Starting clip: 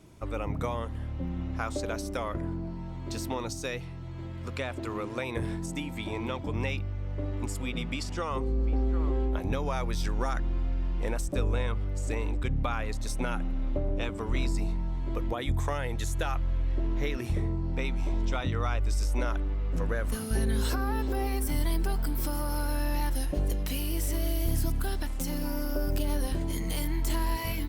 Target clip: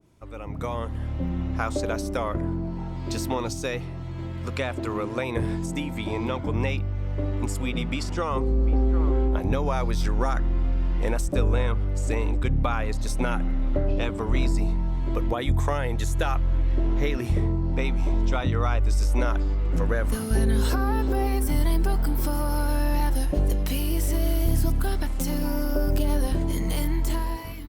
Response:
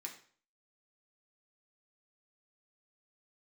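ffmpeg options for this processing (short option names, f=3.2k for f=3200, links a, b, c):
-filter_complex "[0:a]dynaudnorm=f=150:g=9:m=13dB,asplit=2[a][b];[b]asetrate=25442,aresample=44100[c];[1:a]atrim=start_sample=2205[d];[c][d]afir=irnorm=-1:irlink=0,volume=-15.5dB[e];[a][e]amix=inputs=2:normalize=0,adynamicequalizer=threshold=0.0178:dfrequency=1500:dqfactor=0.7:tfrequency=1500:tqfactor=0.7:attack=5:release=100:ratio=0.375:range=2:mode=cutabove:tftype=highshelf,volume=-7dB"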